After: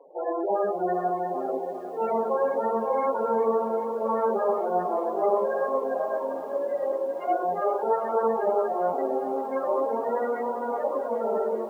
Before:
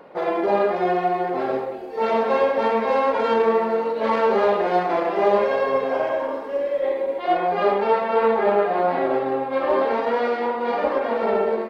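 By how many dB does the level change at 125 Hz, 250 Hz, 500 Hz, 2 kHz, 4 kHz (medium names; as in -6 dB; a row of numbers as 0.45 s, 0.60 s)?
no reading, -6.5 dB, -5.0 dB, -12.5 dB, under -20 dB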